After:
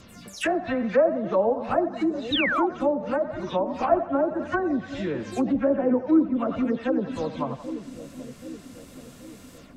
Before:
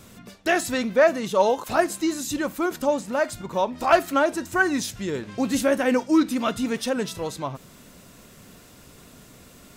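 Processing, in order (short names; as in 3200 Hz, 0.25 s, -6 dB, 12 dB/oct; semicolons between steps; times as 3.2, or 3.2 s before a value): spectral delay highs early, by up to 0.179 s; split-band echo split 510 Hz, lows 0.781 s, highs 89 ms, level -10.5 dB; treble ducked by the level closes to 720 Hz, closed at -19 dBFS; painted sound fall, 2.32–2.67, 730–4000 Hz -25 dBFS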